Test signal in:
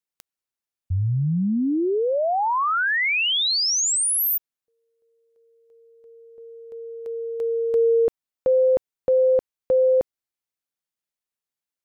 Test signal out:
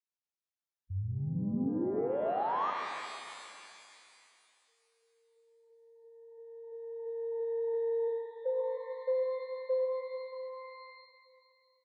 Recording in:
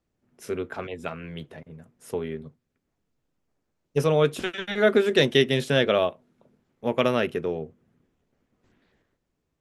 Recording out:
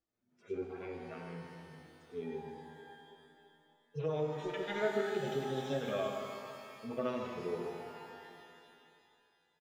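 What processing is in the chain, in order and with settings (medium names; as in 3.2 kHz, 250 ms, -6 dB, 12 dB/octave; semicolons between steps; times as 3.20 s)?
harmonic-percussive separation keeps harmonic; steep low-pass 7.6 kHz; bass shelf 180 Hz -10 dB; band-stop 2.8 kHz, Q 29; de-hum 148.8 Hz, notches 28; compression 3:1, threshold -28 dBFS; delay 152 ms -12 dB; pitch-shifted reverb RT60 2.6 s, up +12 st, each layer -8 dB, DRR 3 dB; trim -6 dB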